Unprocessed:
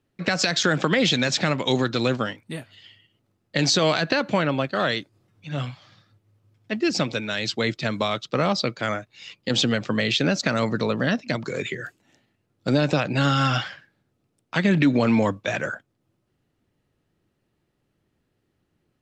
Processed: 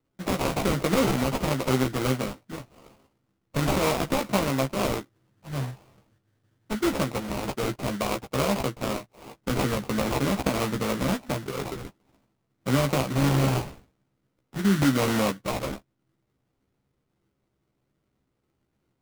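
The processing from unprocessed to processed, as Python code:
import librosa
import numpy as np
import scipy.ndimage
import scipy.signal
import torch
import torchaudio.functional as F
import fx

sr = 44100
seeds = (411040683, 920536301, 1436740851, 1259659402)

y = fx.spec_repair(x, sr, seeds[0], start_s=14.18, length_s=0.6, low_hz=420.0, high_hz=3400.0, source='before')
y = fx.sample_hold(y, sr, seeds[1], rate_hz=1700.0, jitter_pct=20)
y = fx.doubler(y, sr, ms=15.0, db=-5.0)
y = y * 10.0 ** (-4.0 / 20.0)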